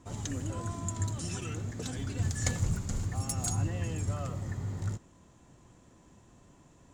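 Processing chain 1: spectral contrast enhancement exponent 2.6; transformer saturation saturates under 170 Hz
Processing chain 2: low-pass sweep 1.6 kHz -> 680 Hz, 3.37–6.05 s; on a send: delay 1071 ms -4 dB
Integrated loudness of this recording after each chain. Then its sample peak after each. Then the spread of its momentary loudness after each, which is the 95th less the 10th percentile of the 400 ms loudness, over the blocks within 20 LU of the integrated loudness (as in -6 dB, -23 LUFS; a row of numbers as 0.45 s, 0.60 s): -36.5 LUFS, -34.0 LUFS; -20.0 dBFS, -16.5 dBFS; 5 LU, 9 LU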